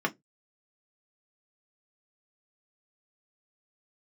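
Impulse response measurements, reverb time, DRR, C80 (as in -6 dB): 0.15 s, 1.0 dB, 36.0 dB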